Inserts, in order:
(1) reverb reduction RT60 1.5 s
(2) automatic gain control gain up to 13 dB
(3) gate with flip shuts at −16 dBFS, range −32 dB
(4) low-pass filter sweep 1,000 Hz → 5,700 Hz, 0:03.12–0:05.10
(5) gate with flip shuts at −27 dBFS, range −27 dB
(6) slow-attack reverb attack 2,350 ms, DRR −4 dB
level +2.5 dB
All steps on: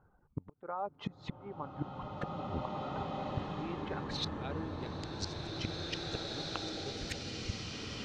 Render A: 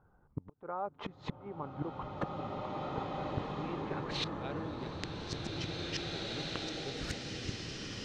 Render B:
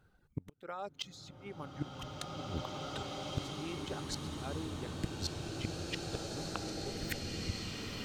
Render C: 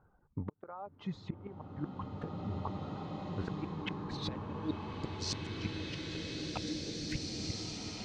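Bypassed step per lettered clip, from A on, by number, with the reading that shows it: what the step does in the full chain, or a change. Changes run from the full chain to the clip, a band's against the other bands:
1, change in crest factor +3.5 dB
4, change in momentary loudness spread +1 LU
2, 8 kHz band +4.5 dB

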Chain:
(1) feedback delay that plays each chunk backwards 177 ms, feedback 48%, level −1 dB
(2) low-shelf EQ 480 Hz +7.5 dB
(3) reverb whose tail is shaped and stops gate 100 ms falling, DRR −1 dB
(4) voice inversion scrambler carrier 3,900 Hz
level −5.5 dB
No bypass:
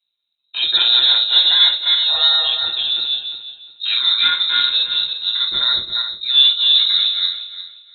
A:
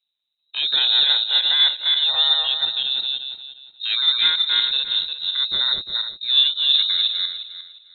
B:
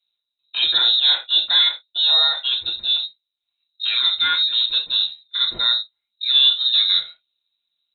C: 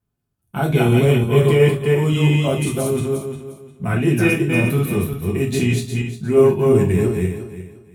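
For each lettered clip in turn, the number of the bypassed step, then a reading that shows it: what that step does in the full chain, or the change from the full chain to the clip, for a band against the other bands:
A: 3, change in momentary loudness spread −2 LU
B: 1, change in momentary loudness spread −5 LU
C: 4, 500 Hz band +25.5 dB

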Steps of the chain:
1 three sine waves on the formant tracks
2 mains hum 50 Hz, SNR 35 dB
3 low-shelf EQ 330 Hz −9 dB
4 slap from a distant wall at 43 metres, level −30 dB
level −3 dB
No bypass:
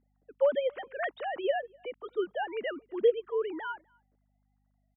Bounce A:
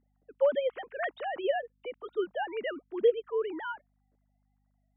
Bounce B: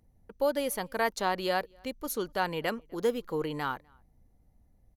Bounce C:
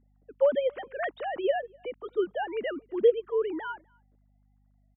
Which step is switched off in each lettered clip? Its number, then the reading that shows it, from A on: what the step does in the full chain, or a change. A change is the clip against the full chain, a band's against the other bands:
4, echo-to-direct ratio −31.0 dB to none audible
1, 500 Hz band −7.0 dB
3, 250 Hz band +3.0 dB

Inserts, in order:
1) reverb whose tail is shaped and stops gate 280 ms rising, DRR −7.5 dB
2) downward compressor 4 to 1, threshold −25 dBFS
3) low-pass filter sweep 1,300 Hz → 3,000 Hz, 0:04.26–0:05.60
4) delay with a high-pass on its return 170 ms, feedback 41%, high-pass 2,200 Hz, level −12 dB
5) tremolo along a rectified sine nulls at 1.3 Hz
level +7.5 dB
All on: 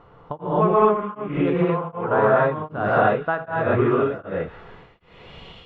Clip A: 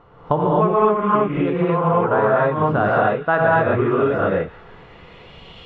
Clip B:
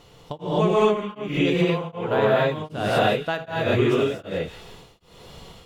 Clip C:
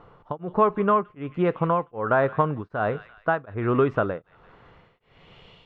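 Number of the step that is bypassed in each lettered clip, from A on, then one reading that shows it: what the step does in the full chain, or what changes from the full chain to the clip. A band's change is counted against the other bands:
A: 5, change in momentary loudness spread −7 LU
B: 3, change in momentary loudness spread −1 LU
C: 1, change in momentary loudness spread −4 LU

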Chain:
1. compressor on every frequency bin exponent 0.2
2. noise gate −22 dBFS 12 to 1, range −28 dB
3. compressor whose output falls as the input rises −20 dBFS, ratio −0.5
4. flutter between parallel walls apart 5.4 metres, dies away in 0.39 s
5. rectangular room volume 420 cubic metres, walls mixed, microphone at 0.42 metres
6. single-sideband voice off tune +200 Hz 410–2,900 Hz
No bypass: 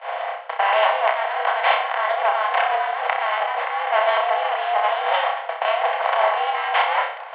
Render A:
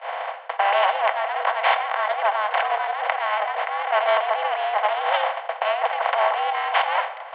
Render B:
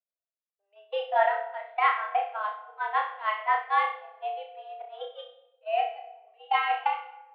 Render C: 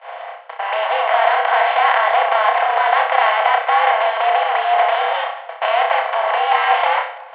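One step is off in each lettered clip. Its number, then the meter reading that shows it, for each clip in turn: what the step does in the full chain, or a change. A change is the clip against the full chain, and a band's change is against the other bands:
4, change in integrated loudness −1.5 LU
1, 4 kHz band −3.0 dB
3, change in crest factor −4.0 dB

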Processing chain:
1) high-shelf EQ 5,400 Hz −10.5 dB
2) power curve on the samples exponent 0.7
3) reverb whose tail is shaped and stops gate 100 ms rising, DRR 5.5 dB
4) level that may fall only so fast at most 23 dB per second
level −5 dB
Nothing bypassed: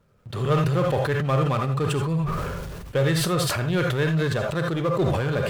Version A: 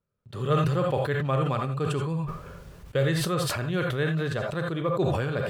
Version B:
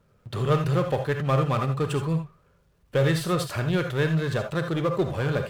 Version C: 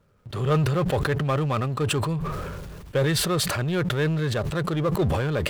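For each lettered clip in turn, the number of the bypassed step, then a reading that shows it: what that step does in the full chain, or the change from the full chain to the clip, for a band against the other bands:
2, change in crest factor +2.5 dB
4, change in crest factor +2.0 dB
3, 8 kHz band +3.0 dB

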